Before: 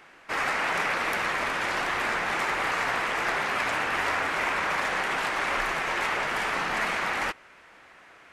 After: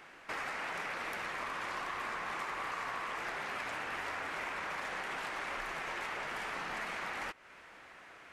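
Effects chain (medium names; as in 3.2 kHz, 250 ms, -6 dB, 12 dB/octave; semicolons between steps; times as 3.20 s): 1.38–3.18 s: peaking EQ 1.1 kHz +8 dB 0.23 oct; compression 3:1, threshold -38 dBFS, peak gain reduction 12 dB; trim -2 dB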